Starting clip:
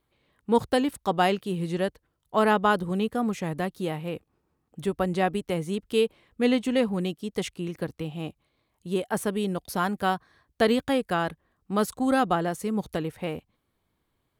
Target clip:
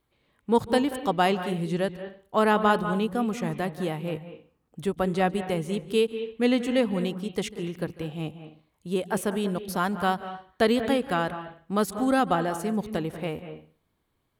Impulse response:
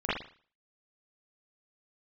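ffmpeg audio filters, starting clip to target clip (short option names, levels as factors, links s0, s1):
-filter_complex "[0:a]asplit=2[s0][s1];[1:a]atrim=start_sample=2205,adelay=145[s2];[s1][s2]afir=irnorm=-1:irlink=0,volume=0.0944[s3];[s0][s3]amix=inputs=2:normalize=0"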